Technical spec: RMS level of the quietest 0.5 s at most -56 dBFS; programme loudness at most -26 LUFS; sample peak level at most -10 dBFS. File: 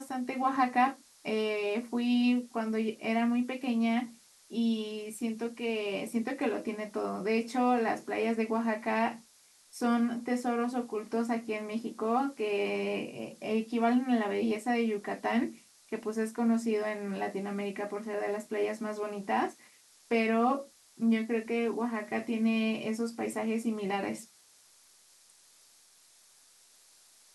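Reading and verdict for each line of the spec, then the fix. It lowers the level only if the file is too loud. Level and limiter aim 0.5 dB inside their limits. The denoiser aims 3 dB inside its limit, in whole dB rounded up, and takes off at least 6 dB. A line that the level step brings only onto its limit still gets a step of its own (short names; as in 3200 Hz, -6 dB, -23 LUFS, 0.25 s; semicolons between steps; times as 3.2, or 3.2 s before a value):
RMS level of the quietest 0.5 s -62 dBFS: OK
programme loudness -31.5 LUFS: OK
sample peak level -15.0 dBFS: OK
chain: none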